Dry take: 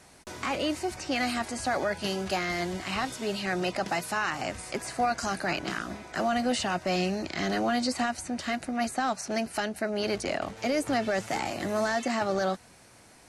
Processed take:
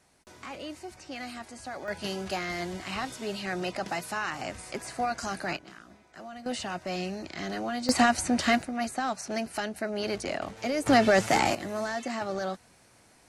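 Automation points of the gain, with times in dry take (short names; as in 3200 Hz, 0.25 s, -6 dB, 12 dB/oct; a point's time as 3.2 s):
-10.5 dB
from 1.88 s -3 dB
from 5.57 s -16 dB
from 6.46 s -5.5 dB
from 7.89 s +7 dB
from 8.62 s -2 dB
from 10.86 s +7 dB
from 11.55 s -4.5 dB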